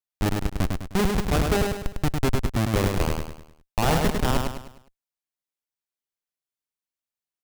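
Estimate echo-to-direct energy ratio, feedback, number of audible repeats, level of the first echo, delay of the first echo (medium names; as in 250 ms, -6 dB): -3.0 dB, 41%, 5, -4.0 dB, 102 ms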